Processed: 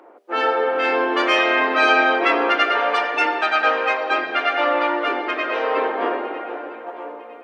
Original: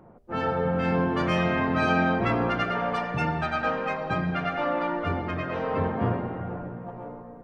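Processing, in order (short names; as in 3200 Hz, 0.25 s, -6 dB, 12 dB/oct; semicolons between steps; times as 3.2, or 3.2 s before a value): steep high-pass 300 Hz 48 dB/oct; bell 2900 Hz +7 dB 1.9 oct; on a send: narrowing echo 0.954 s, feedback 40%, band-pass 2300 Hz, level -18.5 dB; on the sum: gain +6.5 dB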